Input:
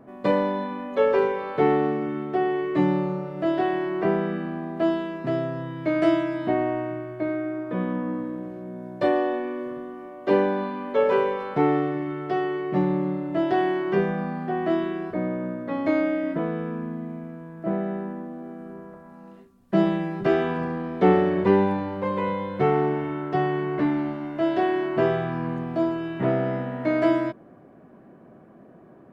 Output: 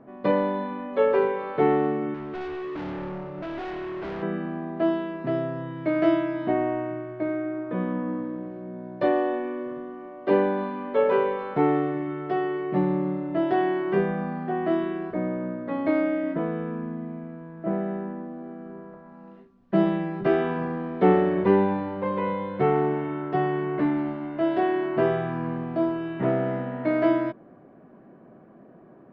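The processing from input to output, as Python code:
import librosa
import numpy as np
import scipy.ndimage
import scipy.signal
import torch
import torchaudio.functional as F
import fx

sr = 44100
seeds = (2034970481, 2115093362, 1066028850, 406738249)

y = fx.peak_eq(x, sr, hz=73.0, db=-6.5, octaves=1.1)
y = fx.overload_stage(y, sr, gain_db=31.0, at=(2.14, 4.23))
y = fx.air_absorb(y, sr, metres=200.0)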